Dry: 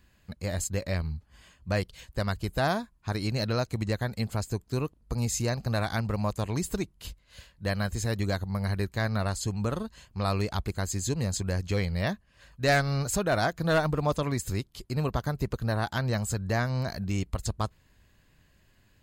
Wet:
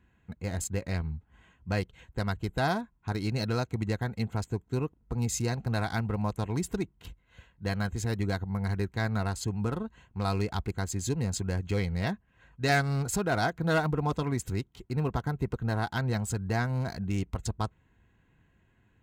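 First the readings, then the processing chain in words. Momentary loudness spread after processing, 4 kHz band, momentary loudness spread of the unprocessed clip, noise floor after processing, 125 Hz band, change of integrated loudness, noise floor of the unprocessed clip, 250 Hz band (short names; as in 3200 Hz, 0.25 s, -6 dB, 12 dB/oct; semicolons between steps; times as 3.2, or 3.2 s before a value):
8 LU, -3.5 dB, 8 LU, -67 dBFS, -1.0 dB, -1.5 dB, -64 dBFS, 0.0 dB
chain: Wiener smoothing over 9 samples; notch comb 590 Hz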